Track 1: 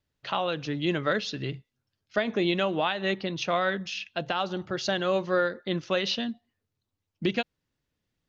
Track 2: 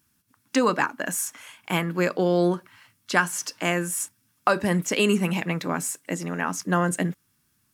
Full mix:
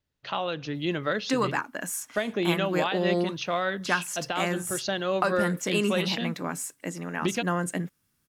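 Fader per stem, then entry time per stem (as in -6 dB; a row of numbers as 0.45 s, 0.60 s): -1.5 dB, -5.0 dB; 0.00 s, 0.75 s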